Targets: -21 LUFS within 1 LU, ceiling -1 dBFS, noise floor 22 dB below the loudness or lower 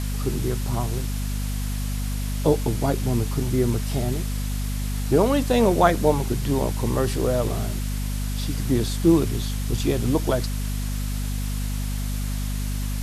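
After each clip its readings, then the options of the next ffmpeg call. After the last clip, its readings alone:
hum 50 Hz; highest harmonic 250 Hz; hum level -24 dBFS; noise floor -27 dBFS; noise floor target -47 dBFS; loudness -24.5 LUFS; peak level -3.5 dBFS; loudness target -21.0 LUFS
-> -af "bandreject=f=50:t=h:w=4,bandreject=f=100:t=h:w=4,bandreject=f=150:t=h:w=4,bandreject=f=200:t=h:w=4,bandreject=f=250:t=h:w=4"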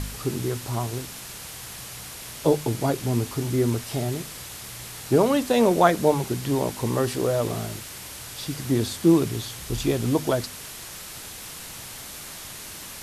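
hum not found; noise floor -39 dBFS; noise floor target -47 dBFS
-> -af "afftdn=nr=8:nf=-39"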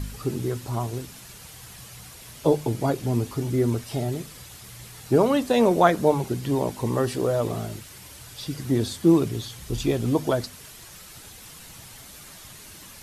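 noise floor -45 dBFS; noise floor target -47 dBFS
-> -af "afftdn=nr=6:nf=-45"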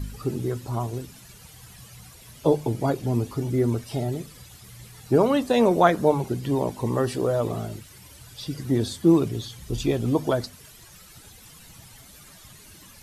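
noise floor -49 dBFS; loudness -24.5 LUFS; peak level -3.5 dBFS; loudness target -21.0 LUFS
-> -af "volume=1.5,alimiter=limit=0.891:level=0:latency=1"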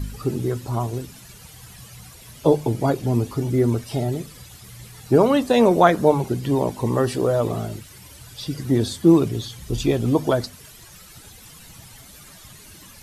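loudness -21.0 LUFS; peak level -1.0 dBFS; noise floor -45 dBFS

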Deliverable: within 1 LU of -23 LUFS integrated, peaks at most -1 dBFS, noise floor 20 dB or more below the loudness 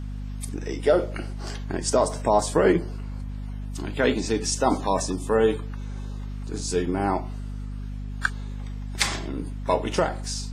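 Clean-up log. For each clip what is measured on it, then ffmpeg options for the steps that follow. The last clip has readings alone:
hum 50 Hz; highest harmonic 250 Hz; hum level -30 dBFS; loudness -26.5 LUFS; peak level -5.5 dBFS; loudness target -23.0 LUFS
-> -af "bandreject=f=50:t=h:w=6,bandreject=f=100:t=h:w=6,bandreject=f=150:t=h:w=6,bandreject=f=200:t=h:w=6,bandreject=f=250:t=h:w=6"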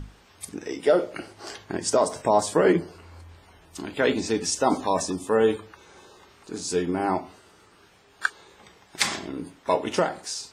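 hum not found; loudness -25.5 LUFS; peak level -6.0 dBFS; loudness target -23.0 LUFS
-> -af "volume=1.33"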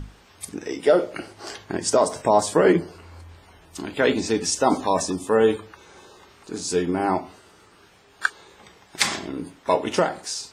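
loudness -23.0 LUFS; peak level -3.5 dBFS; noise floor -54 dBFS

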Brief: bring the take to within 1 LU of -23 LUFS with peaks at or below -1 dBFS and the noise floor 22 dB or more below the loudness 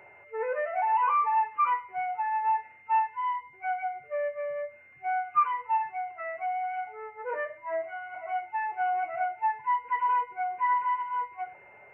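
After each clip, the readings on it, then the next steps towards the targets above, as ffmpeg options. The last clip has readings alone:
steady tone 2.1 kHz; tone level -53 dBFS; loudness -30.0 LUFS; peak level -14.5 dBFS; loudness target -23.0 LUFS
-> -af "bandreject=f=2100:w=30"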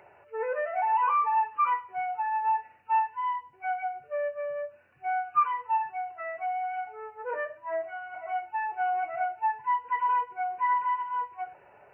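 steady tone not found; loudness -29.5 LUFS; peak level -14.5 dBFS; loudness target -23.0 LUFS
-> -af "volume=2.11"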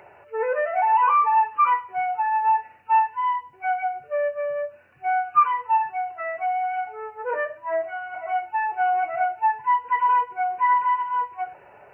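loudness -23.5 LUFS; peak level -8.0 dBFS; noise floor -51 dBFS

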